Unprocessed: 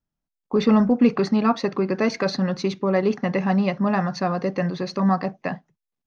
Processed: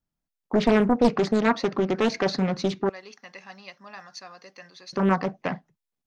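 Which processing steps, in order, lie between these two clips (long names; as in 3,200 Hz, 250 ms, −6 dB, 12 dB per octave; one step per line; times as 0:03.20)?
0:02.89–0:04.93: first difference
highs frequency-modulated by the lows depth 0.91 ms
level −1 dB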